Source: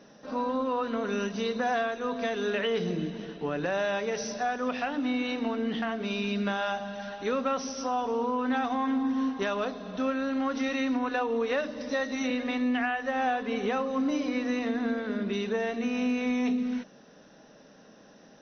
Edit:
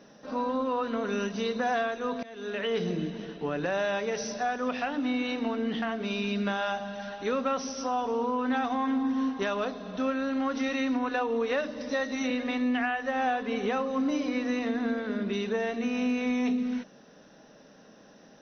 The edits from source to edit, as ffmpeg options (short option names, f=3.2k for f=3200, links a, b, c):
-filter_complex "[0:a]asplit=2[a][b];[a]atrim=end=2.23,asetpts=PTS-STARTPTS,afade=t=out:st=2.226:d=0.004:c=hsin:silence=0.0707946[c];[b]atrim=start=2.23,asetpts=PTS-STARTPTS,afade=t=in:d=0.54:silence=0.0707946[d];[c][d]concat=n=2:v=0:a=1"